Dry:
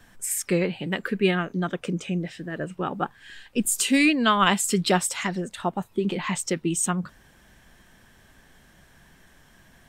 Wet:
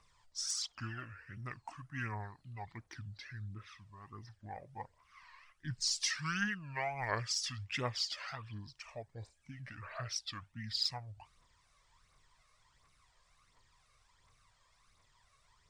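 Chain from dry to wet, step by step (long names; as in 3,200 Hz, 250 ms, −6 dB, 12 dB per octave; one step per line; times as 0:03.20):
guitar amp tone stack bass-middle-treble 5-5-5
change of speed 0.63×
tape wow and flutter 140 cents
phase shifter 1.4 Hz, delay 1.9 ms, feedback 52%
level −5.5 dB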